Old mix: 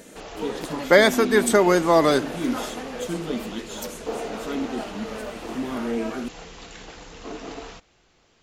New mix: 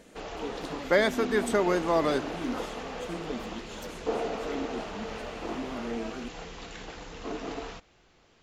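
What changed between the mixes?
speech -8.0 dB; master: add treble shelf 6.3 kHz -8.5 dB

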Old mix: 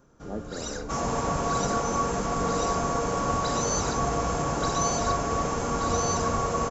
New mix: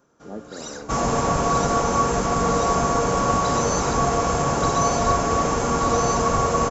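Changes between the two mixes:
first sound: add high-pass 300 Hz 6 dB/octave; second sound +6.5 dB

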